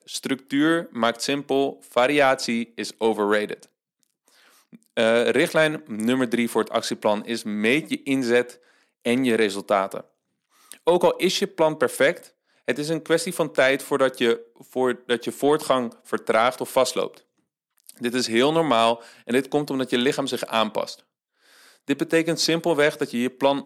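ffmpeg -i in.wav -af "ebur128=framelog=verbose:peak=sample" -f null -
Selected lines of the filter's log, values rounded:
Integrated loudness:
  I:         -22.7 LUFS
  Threshold: -33.3 LUFS
Loudness range:
  LRA:         1.9 LU
  Threshold: -43.4 LUFS
  LRA low:   -24.4 LUFS
  LRA high:  -22.5 LUFS
Sample peak:
  Peak:       -6.9 dBFS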